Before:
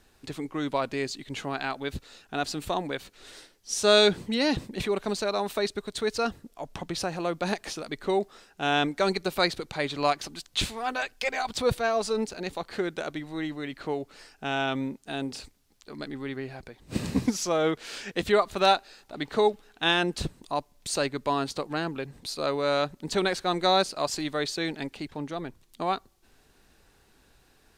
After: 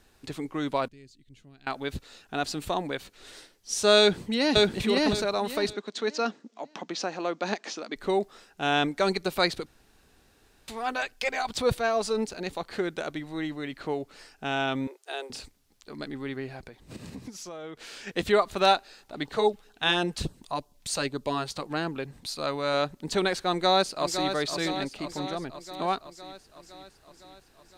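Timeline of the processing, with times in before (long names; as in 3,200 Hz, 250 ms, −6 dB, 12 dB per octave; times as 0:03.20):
0:00.88–0:01.67: guitar amp tone stack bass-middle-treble 10-0-1
0:03.99–0:04.67: delay throw 560 ms, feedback 25%, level −0.5 dB
0:05.73–0:07.96: elliptic band-pass filter 220–6,600 Hz
0:09.66–0:10.68: fill with room tone
0:14.87–0:15.30: Butterworth high-pass 350 Hz 72 dB per octave
0:16.68–0:18.07: downward compressor 4 to 1, threshold −40 dBFS
0:19.25–0:21.61: auto-filter notch sine 5.2 Hz → 1.4 Hz 260–2,300 Hz
0:22.14–0:22.74: parametric band 420 Hz −5.5 dB 0.85 octaves
0:23.50–0:24.31: delay throw 510 ms, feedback 65%, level −8 dB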